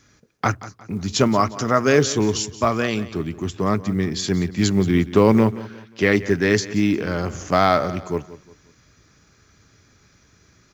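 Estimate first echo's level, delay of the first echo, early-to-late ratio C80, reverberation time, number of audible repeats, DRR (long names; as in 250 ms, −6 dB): −16.5 dB, 178 ms, no reverb audible, no reverb audible, 3, no reverb audible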